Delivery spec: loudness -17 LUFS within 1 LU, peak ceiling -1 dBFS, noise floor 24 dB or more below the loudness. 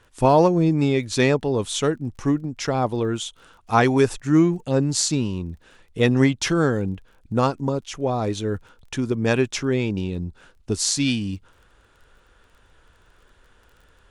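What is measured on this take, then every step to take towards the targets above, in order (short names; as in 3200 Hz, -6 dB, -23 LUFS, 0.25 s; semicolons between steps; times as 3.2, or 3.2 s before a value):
ticks 23/s; loudness -22.0 LUFS; peak -3.5 dBFS; loudness target -17.0 LUFS
-> de-click; gain +5 dB; limiter -1 dBFS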